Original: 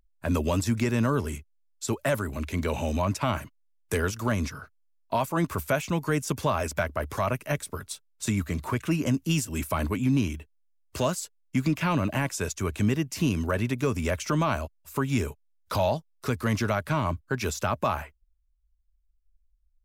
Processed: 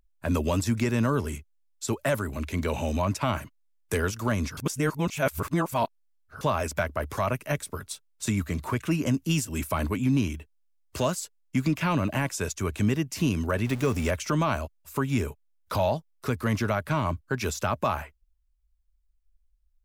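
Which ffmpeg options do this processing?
-filter_complex "[0:a]asettb=1/sr,asplit=3[a][b][c];[a]atrim=end=13.664[d];[b]atrim=start=13.66:end=14.11,asetpts=PTS-STARTPTS,afade=t=in:d=0.004:c=qsin,afade=t=out:st=0.446:d=0.004:c=qsin,aeval=exprs='val(0)+0.5*0.0168*sgn(val(0))':c=same[e];[c]atrim=start=14.106[f];[d][e]acrossfade=d=0.004:c1=hsin:c2=qsin[g];[g][f]acrossfade=d=0.004:c1=qsin:c2=hsin,asettb=1/sr,asplit=3[h][i][j];[h]atrim=end=15.064[k];[i]atrim=start=15.06:end=16.91,asetpts=PTS-STARTPTS,afade=t=in:d=0.004:c=qsin,afade=t=out:st=1.846:d=0.004:c=qsin,equalizer=f=5.9k:w=0.66:g=-3[l];[j]atrim=start=16.906[m];[k][l]acrossfade=d=0.004:c1=hsin:c2=qsin[n];[n][m]acrossfade=d=0.004:c1=qsin:c2=hsin,asplit=3[o][p][q];[o]atrim=end=4.572[r];[p]atrim=start=4.568:end=6.412,asetpts=PTS-STARTPTS,areverse[s];[q]atrim=start=6.408[t];[r][s]acrossfade=d=0.004:c1=hsin:c2=hsin[u];[u][t]acrossfade=d=0.004:c1=hsin:c2=hsin"

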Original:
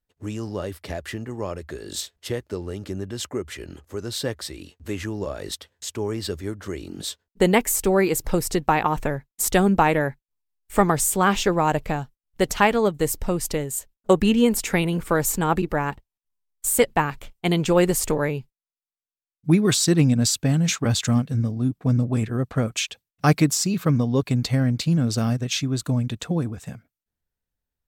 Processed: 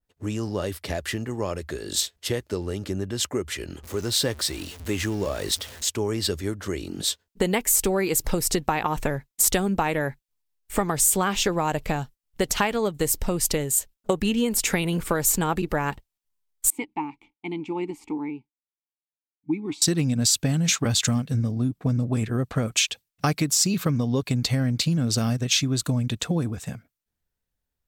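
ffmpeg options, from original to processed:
-filter_complex "[0:a]asettb=1/sr,asplit=3[a][b][c];[a]atrim=end=3.834[d];[b]atrim=start=3.83:end=5.89,asetpts=PTS-STARTPTS,afade=t=in:d=0.004:c=qsin,afade=t=out:st=2.056:d=0.004:c=qsin,aeval=exprs='val(0)+0.5*0.00944*sgn(val(0))':c=same[e];[c]atrim=start=5.886[f];[d][e]acrossfade=d=0.004:c1=hsin:c2=qsin[g];[g][f]acrossfade=d=0.004:c1=qsin:c2=hsin,asettb=1/sr,asplit=3[h][i][j];[h]atrim=end=16.704[k];[i]atrim=start=16.7:end=19.82,asetpts=PTS-STARTPTS,afade=t=in:d=0.004:c=qsin,afade=t=out:st=3.116:d=0.004:c=qsin,asplit=3[l][m][n];[l]bandpass=f=300:t=q:w=8,volume=0dB[o];[m]bandpass=f=870:t=q:w=8,volume=-6dB[p];[n]bandpass=f=2.24k:t=q:w=8,volume=-9dB[q];[o][p][q]amix=inputs=3:normalize=0[r];[j]atrim=start=19.816[s];[k][r]acrossfade=d=0.004:c1=hsin:c2=qsin[t];[t][s]acrossfade=d=0.004:c1=qsin:c2=hsin,acompressor=threshold=-22dB:ratio=6,adynamicequalizer=threshold=0.00891:dfrequency=2300:dqfactor=0.7:tfrequency=2300:tqfactor=0.7:attack=5:release=100:ratio=0.375:range=2.5:mode=boostabove:tftype=highshelf,volume=2dB"

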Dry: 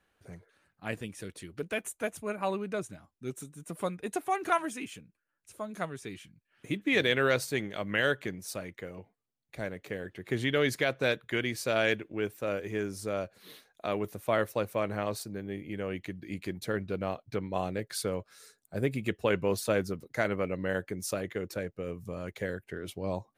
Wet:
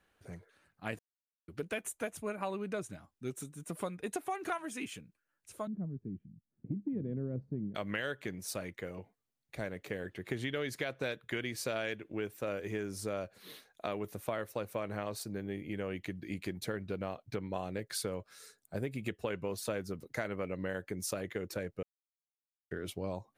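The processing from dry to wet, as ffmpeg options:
-filter_complex "[0:a]asettb=1/sr,asplit=3[a][b][c];[a]atrim=end=5.674[d];[b]atrim=start=5.67:end=7.75,asetpts=PTS-STARTPTS,afade=t=in:d=0.004:c=qsin,afade=t=out:st=2.076:d=0.004:c=qsin,lowpass=f=210:t=q:w=1.8[e];[c]atrim=start=7.746[f];[d][e]acrossfade=d=0.004:c1=hsin:c2=qsin[g];[g][f]acrossfade=d=0.004:c1=qsin:c2=hsin,asplit=5[h][i][j][k][l];[h]atrim=end=0.99,asetpts=PTS-STARTPTS,afade=t=out:st=0.986:d=0.004:c=hsin[m];[i]atrim=start=0.99:end=1.48,asetpts=PTS-STARTPTS,volume=0[n];[j]atrim=start=1.48:end=21.83,asetpts=PTS-STARTPTS,afade=t=in:d=0.004:c=hsin,afade=t=out:st=20.346:d=0.004:c=hsin[o];[k]atrim=start=21.83:end=22.71,asetpts=PTS-STARTPTS,volume=0[p];[l]atrim=start=22.71,asetpts=PTS-STARTPTS,afade=t=in:d=0.004:c=hsin[q];[m][n][o][p][q]concat=n=5:v=0:a=1,acompressor=threshold=-33dB:ratio=6"

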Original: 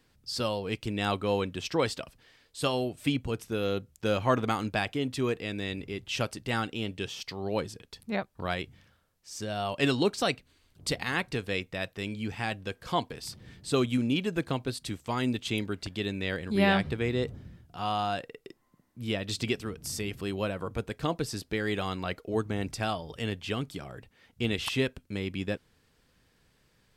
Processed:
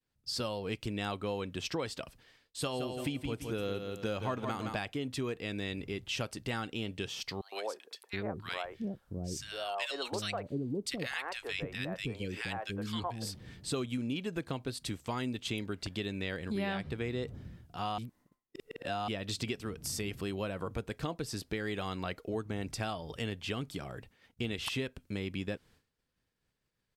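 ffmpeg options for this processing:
-filter_complex "[0:a]asplit=3[a][b][c];[a]afade=t=out:st=2.65:d=0.02[d];[b]aecho=1:1:168|336|504|672:0.398|0.127|0.0408|0.013,afade=t=in:st=2.65:d=0.02,afade=t=out:st=4.76:d=0.02[e];[c]afade=t=in:st=4.76:d=0.02[f];[d][e][f]amix=inputs=3:normalize=0,asettb=1/sr,asplit=3[g][h][i];[g]atrim=end=7.414[j];[h]atrim=start=7.41:end=13.35,asetpts=PTS-STARTPTS,afade=t=in:d=0.004:c=qsin,afade=t=out:st=5.936:d=0.004:c=qsin,acrossover=split=450|1400[k][l][m];[l]adelay=110[n];[k]adelay=720[o];[o][n][m]amix=inputs=3:normalize=0,atrim=end_sample=261954[p];[i]atrim=start=13.346[q];[j][p]acrossfade=d=0.004:c1=hsin:c2=qsin[r];[r][q]acrossfade=d=0.004:c1=qsin:c2=hsin,asplit=3[s][t][u];[s]atrim=end=17.982[v];[t]atrim=start=17.978:end=19.082,asetpts=PTS-STARTPTS,areverse[w];[u]atrim=start=19.078[x];[v][w]acrossfade=d=0.004:c1=hsin:c2=hsin[y];[y][x]acrossfade=d=0.004:c1=hsin:c2=hsin,agate=range=-33dB:threshold=-55dB:ratio=3:detection=peak,acompressor=threshold=-33dB:ratio=4"

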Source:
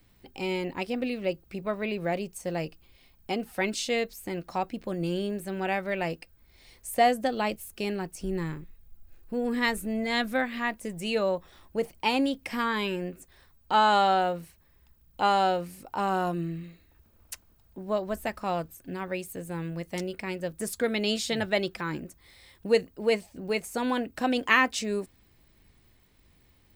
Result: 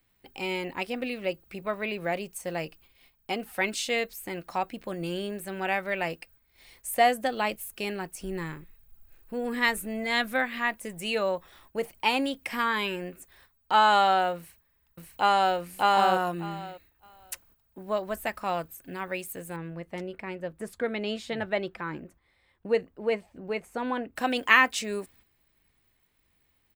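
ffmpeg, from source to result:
-filter_complex "[0:a]asplit=2[a][b];[b]afade=t=in:st=14.37:d=0.01,afade=t=out:st=15.57:d=0.01,aecho=0:1:600|1200|1800:1|0.15|0.0225[c];[a][c]amix=inputs=2:normalize=0,asettb=1/sr,asplit=3[d][e][f];[d]atrim=end=19.564[g];[e]atrim=start=19.56:end=24.16,asetpts=PTS-STARTPTS,afade=t=in:d=0.004:c=qsin,afade=t=out:st=4.596:d=0.004:c=qsin,lowpass=f=1.2k:p=1[h];[f]atrim=start=24.156[i];[g][h]acrossfade=d=0.004:c1=hsin:c2=qsin[j];[j][i]acrossfade=d=0.004:c1=qsin:c2=hsin,tiltshelf=f=660:g=-5,agate=range=-8dB:threshold=-56dB:ratio=16:detection=peak,equalizer=f=5.3k:t=o:w=1.3:g=-6"

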